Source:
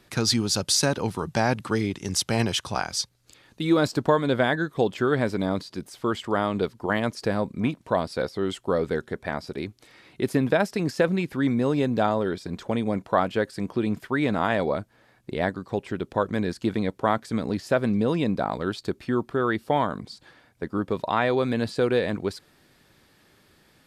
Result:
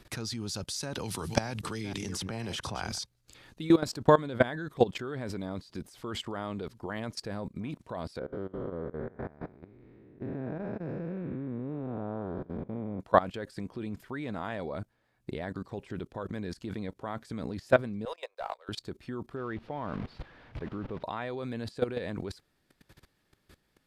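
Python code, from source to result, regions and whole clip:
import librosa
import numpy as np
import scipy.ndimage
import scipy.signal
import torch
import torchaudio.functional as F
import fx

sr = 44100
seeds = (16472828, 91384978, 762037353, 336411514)

y = fx.chain(x, sr, fx.reverse_delay(ms=246, wet_db=-13.5),
    fx.band_squash(depth_pct=100), at=(0.95, 2.99))
y = fx.chain(y, sr, fx.spec_blur(span_ms=387.0),
    fx.lowpass(hz=1300.0, slope=12),
    fx.tremolo(hz=4.8, depth=0.66), at=(8.19, 13.0))
y = fx.chain(y, sr, fx.steep_highpass(hz=500.0, slope=48),
    fx.leveller(passes=1),
    fx.upward_expand(threshold_db=-37.0, expansion=2.5), at=(18.05, 18.69))
y = fx.chain(y, sr, fx.delta_mod(bps=64000, step_db=-33.5),
    fx.air_absorb(metres=340.0), at=(19.36, 21.03))
y = fx.low_shelf(y, sr, hz=68.0, db=11.0)
y = fx.level_steps(y, sr, step_db=19)
y = F.gain(torch.from_numpy(y), 2.0).numpy()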